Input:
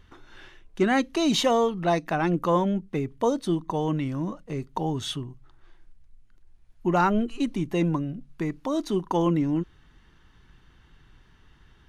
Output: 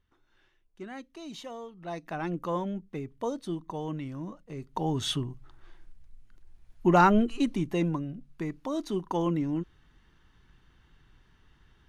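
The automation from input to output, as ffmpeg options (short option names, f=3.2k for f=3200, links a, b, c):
-af "volume=2dB,afade=t=in:st=1.76:d=0.43:silence=0.281838,afade=t=in:st=4.56:d=0.6:silence=0.298538,afade=t=out:st=7.04:d=0.92:silence=0.446684"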